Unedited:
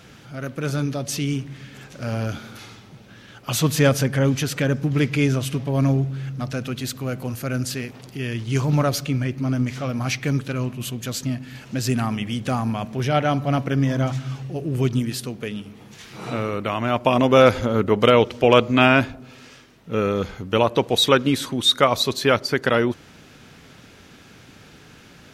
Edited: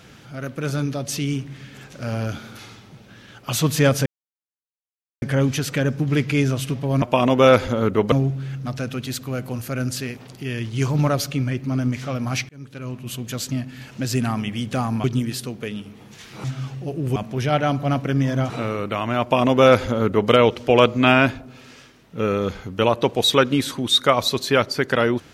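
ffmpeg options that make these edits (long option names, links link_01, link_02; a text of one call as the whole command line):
ffmpeg -i in.wav -filter_complex "[0:a]asplit=9[link_01][link_02][link_03][link_04][link_05][link_06][link_07][link_08][link_09];[link_01]atrim=end=4.06,asetpts=PTS-STARTPTS,afade=type=out:start_time=4.056:duration=0.004:curve=hsin,apad=pad_dur=1.16[link_10];[link_02]atrim=start=4.06:end=5.862,asetpts=PTS-STARTPTS,afade=type=in:duration=0.004:curve=hsin[link_11];[link_03]atrim=start=16.948:end=18.052[link_12];[link_04]atrim=start=5.858:end=10.23,asetpts=PTS-STARTPTS,afade=type=out:start_time=4.368:duration=0.004:curve=hsin[link_13];[link_05]atrim=start=10.23:end=12.782,asetpts=PTS-STARTPTS,afade=type=in:duration=0.76[link_14];[link_06]atrim=start=14.838:end=16.242[link_15];[link_07]atrim=start=14.118:end=14.842[link_16];[link_08]atrim=start=12.778:end=14.122[link_17];[link_09]atrim=start=16.238[link_18];[link_10][link_11]concat=n=2:v=0:a=1[link_19];[link_19][link_12]acrossfade=duration=0.004:curve1=hsin:curve2=hsin[link_20];[link_13][link_14]concat=n=2:v=0:a=1[link_21];[link_20][link_21]acrossfade=duration=0.004:curve1=hsin:curve2=hsin[link_22];[link_22][link_15]acrossfade=duration=0.004:curve1=hsin:curve2=hsin[link_23];[link_23][link_16]acrossfade=duration=0.004:curve1=hsin:curve2=hsin[link_24];[link_24][link_17]acrossfade=duration=0.004:curve1=hsin:curve2=hsin[link_25];[link_25][link_18]acrossfade=duration=0.004:curve1=hsin:curve2=hsin" out.wav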